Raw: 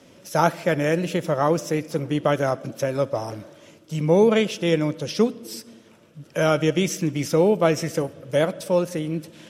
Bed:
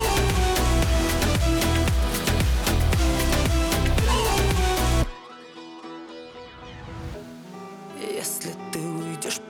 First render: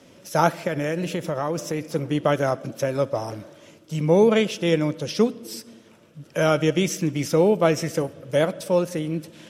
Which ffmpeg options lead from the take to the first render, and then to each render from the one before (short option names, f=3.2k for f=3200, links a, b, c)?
-filter_complex "[0:a]asettb=1/sr,asplit=3[a][b][c];[a]atrim=end=0.674[d];[b]atrim=start=0.67:end=1.85,asetpts=PTS-STARTPTS,afade=t=in:d=0.004:c=qsin,afade=t=out:st=1.176:d=0.004:c=qsin,acompressor=threshold=-21dB:ratio=5:attack=3.2:release=140:knee=1:detection=peak[e];[c]atrim=start=1.846[f];[d][e]acrossfade=d=0.004:c1=hsin:c2=qsin[g];[g][f]acrossfade=d=0.004:c1=qsin:c2=hsin"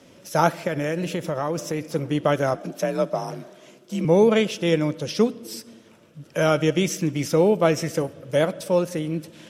-filter_complex "[0:a]asettb=1/sr,asplit=3[a][b][c];[a]atrim=end=2.544[d];[b]atrim=start=2.54:end=4.05,asetpts=PTS-STARTPTS,afade=t=in:d=0.004:c=qsin,afade=t=out:st=1.506:d=0.004:c=qsin,afreqshift=42[e];[c]atrim=start=4.046[f];[d][e]acrossfade=d=0.004:c1=hsin:c2=qsin[g];[g][f]acrossfade=d=0.004:c1=qsin:c2=hsin"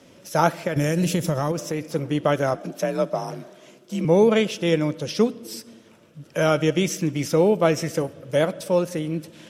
-filter_complex "[0:a]asettb=1/sr,asplit=3[a][b][c];[a]atrim=end=0.764[d];[b]atrim=start=0.76:end=1.52,asetpts=PTS-STARTPTS,afade=t=in:d=0.004:c=qsin,afade=t=out:st=0.756:d=0.004:c=qsin,bass=f=250:g=9,treble=f=4k:g=11[e];[c]atrim=start=1.516[f];[d][e]acrossfade=d=0.004:c1=hsin:c2=qsin[g];[g][f]acrossfade=d=0.004:c1=qsin:c2=hsin"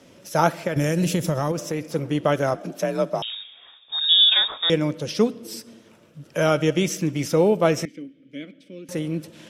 -filter_complex "[0:a]asettb=1/sr,asplit=3[a][b][c];[a]atrim=end=3.224[d];[b]atrim=start=3.22:end=4.7,asetpts=PTS-STARTPTS,afade=t=in:d=0.004:c=qsin,afade=t=out:st=1.476:d=0.004:c=qsin,lowpass=f=3.3k:t=q:w=0.5098,lowpass=f=3.3k:t=q:w=0.6013,lowpass=f=3.3k:t=q:w=0.9,lowpass=f=3.3k:t=q:w=2.563,afreqshift=-3900[e];[c]atrim=start=4.696[f];[d][e]acrossfade=d=0.004:c1=hsin:c2=qsin[g];[g][f]acrossfade=d=0.004:c1=qsin:c2=hsin,asettb=1/sr,asplit=3[h][i][j];[h]atrim=end=7.854[k];[i]atrim=start=7.85:end=8.89,asetpts=PTS-STARTPTS,afade=t=in:d=0.004:c=qsin,afade=t=out:st=1.036:d=0.004:c=qsin,asplit=3[l][m][n];[l]bandpass=f=270:t=q:w=8,volume=0dB[o];[m]bandpass=f=2.29k:t=q:w=8,volume=-6dB[p];[n]bandpass=f=3.01k:t=q:w=8,volume=-9dB[q];[o][p][q]amix=inputs=3:normalize=0[r];[j]atrim=start=8.886[s];[k][r]acrossfade=d=0.004:c1=hsin:c2=qsin[t];[t][s]acrossfade=d=0.004:c1=qsin:c2=hsin"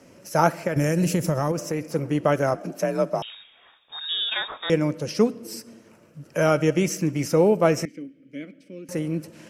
-af "equalizer=f=3.5k:t=o:w=0.35:g=-13"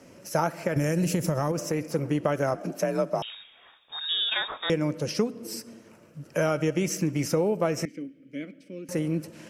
-af "acompressor=threshold=-21dB:ratio=6"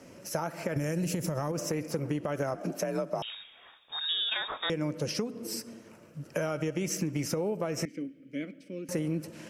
-af "alimiter=limit=-17dB:level=0:latency=1:release=165,acompressor=threshold=-27dB:ratio=6"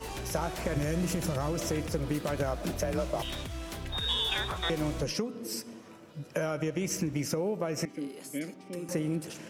-filter_complex "[1:a]volume=-17dB[a];[0:a][a]amix=inputs=2:normalize=0"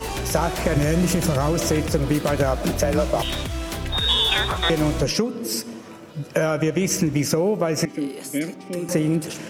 -af "volume=10.5dB"